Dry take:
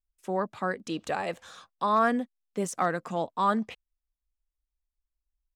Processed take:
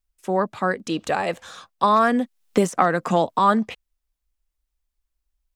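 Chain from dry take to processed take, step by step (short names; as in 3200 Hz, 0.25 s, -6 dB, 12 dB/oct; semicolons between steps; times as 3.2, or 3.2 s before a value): 1.83–3.39 three-band squash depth 100%; gain +7.5 dB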